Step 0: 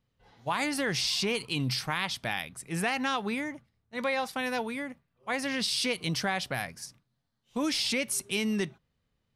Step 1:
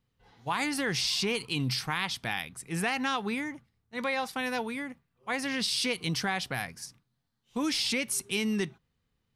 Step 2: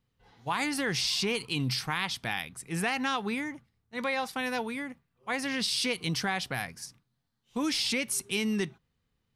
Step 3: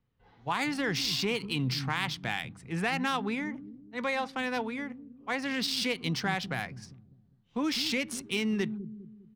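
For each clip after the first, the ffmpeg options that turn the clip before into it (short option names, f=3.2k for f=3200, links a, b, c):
-af "equalizer=f=600:w=7.1:g=-9"
-af anull
-filter_complex "[0:a]acrossover=split=300[a][b];[a]aecho=1:1:202|404|606|808|1010:0.562|0.236|0.0992|0.0417|0.0175[c];[b]adynamicsmooth=sensitivity=4.5:basefreq=3.4k[d];[c][d]amix=inputs=2:normalize=0"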